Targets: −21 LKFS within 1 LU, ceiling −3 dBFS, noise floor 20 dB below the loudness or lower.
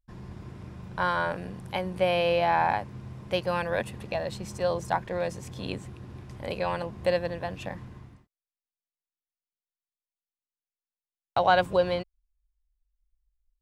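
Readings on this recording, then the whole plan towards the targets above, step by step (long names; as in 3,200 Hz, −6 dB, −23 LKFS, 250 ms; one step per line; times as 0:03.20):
integrated loudness −28.5 LKFS; sample peak −9.0 dBFS; target loudness −21.0 LKFS
→ level +7.5 dB
brickwall limiter −3 dBFS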